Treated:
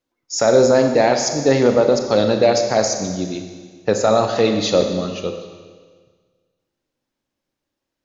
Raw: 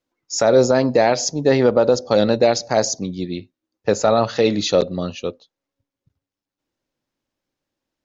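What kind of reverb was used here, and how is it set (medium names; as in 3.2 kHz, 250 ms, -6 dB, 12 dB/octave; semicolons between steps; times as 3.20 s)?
Schroeder reverb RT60 1.6 s, combs from 29 ms, DRR 5 dB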